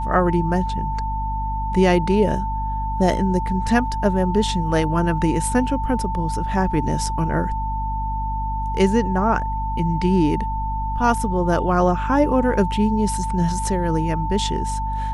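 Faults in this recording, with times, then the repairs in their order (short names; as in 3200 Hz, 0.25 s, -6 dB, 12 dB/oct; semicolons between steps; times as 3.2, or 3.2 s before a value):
hum 50 Hz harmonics 5 -26 dBFS
tone 890 Hz -25 dBFS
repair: de-hum 50 Hz, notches 5; notch 890 Hz, Q 30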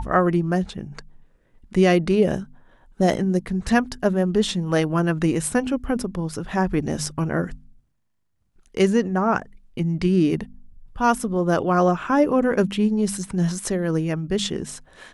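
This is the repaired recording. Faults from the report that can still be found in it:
none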